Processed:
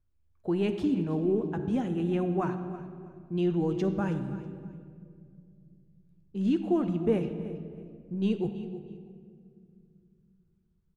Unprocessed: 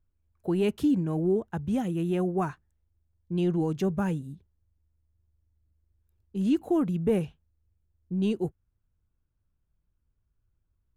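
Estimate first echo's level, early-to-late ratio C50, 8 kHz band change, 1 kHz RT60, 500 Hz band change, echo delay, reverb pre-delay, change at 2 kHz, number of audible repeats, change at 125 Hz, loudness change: -16.0 dB, 8.5 dB, no reading, 1.8 s, -0.5 dB, 322 ms, 9 ms, -1.0 dB, 2, -1.5 dB, -2.0 dB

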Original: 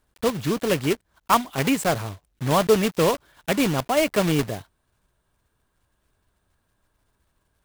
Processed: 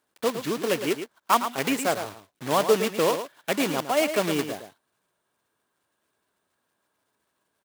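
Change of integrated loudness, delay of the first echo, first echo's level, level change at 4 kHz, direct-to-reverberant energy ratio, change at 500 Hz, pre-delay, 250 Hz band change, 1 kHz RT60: -2.5 dB, 111 ms, -9.5 dB, -1.5 dB, no reverb, -2.0 dB, no reverb, -5.0 dB, no reverb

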